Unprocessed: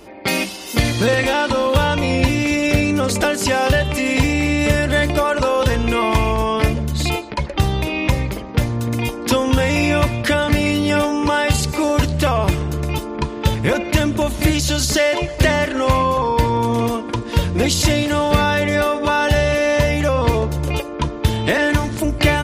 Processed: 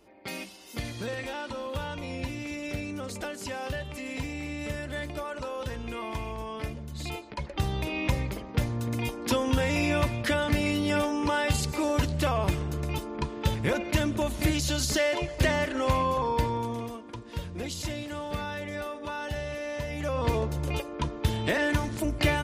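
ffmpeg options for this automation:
ffmpeg -i in.wav -af "volume=-1dB,afade=type=in:start_time=6.89:duration=1.09:silence=0.375837,afade=type=out:start_time=16.33:duration=0.54:silence=0.375837,afade=type=in:start_time=19.87:duration=0.47:silence=0.375837" out.wav

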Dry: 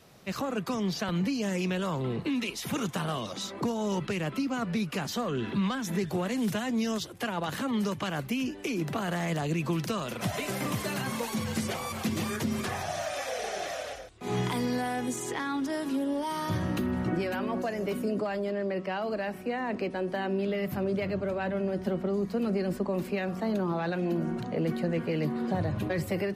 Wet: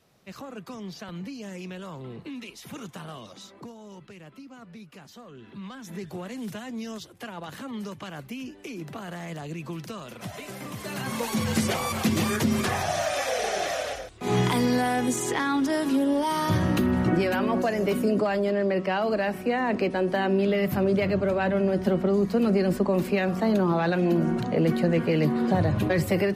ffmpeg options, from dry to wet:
ffmpeg -i in.wav -af "volume=13.5dB,afade=type=out:start_time=3.28:duration=0.54:silence=0.446684,afade=type=in:start_time=5.45:duration=0.61:silence=0.354813,afade=type=in:start_time=10.75:duration=0.79:silence=0.237137" out.wav

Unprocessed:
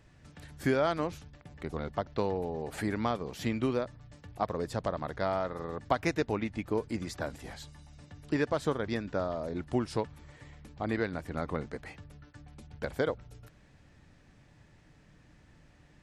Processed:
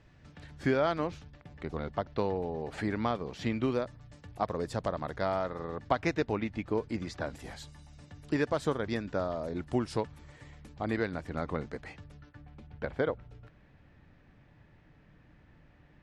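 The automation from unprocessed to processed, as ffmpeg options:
ffmpeg -i in.wav -af "asetnsamples=nb_out_samples=441:pad=0,asendcmd='3.68 lowpass f 11000;5.56 lowpass f 5400;7.35 lowpass f 12000;11.15 lowpass f 7200;12.29 lowpass f 2900',lowpass=5200" out.wav

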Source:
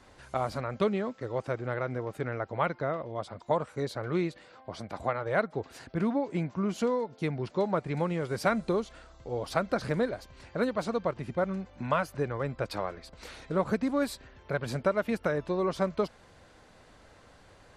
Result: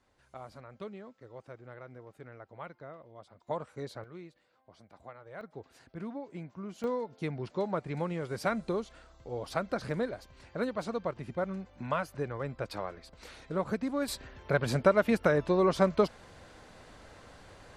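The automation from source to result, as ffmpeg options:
ffmpeg -i in.wav -af "asetnsamples=nb_out_samples=441:pad=0,asendcmd='3.47 volume volume -7.5dB;4.04 volume volume -18dB;5.41 volume volume -11.5dB;6.84 volume volume -4dB;14.08 volume volume 3.5dB',volume=-15.5dB" out.wav

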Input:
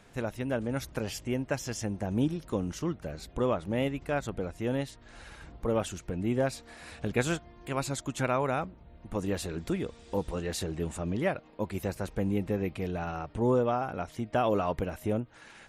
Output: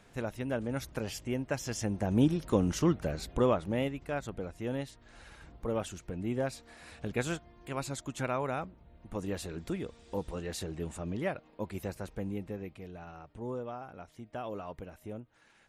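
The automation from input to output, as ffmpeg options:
ffmpeg -i in.wav -af "volume=5.5dB,afade=type=in:start_time=1.5:duration=1.41:silence=0.398107,afade=type=out:start_time=2.91:duration=1.04:silence=0.316228,afade=type=out:start_time=11.79:duration=1.05:silence=0.398107" out.wav

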